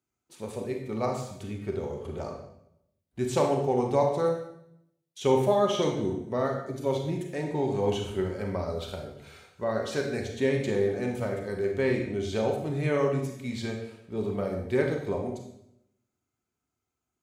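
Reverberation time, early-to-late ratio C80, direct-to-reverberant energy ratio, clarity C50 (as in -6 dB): 0.75 s, 8.0 dB, 2.0 dB, 4.5 dB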